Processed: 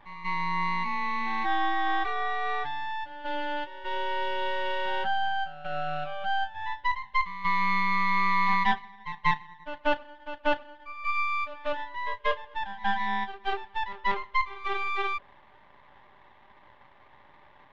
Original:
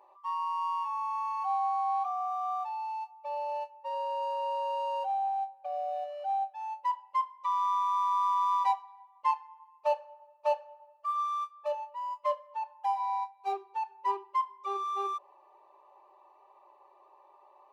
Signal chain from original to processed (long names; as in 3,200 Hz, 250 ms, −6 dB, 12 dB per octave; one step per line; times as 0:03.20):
half-wave rectification
low-pass with resonance 3,200 Hz, resonance Q 2.4
echo ahead of the sound 189 ms −13 dB
level +6 dB